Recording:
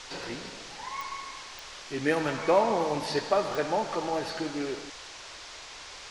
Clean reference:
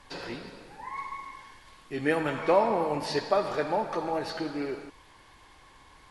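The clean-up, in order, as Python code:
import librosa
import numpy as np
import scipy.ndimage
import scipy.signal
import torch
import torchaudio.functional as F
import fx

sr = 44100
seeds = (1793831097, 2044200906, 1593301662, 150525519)

y = fx.fix_declip(x, sr, threshold_db=-13.5)
y = fx.fix_declick_ar(y, sr, threshold=10.0)
y = fx.noise_reduce(y, sr, print_start_s=5.01, print_end_s=5.51, reduce_db=11.0)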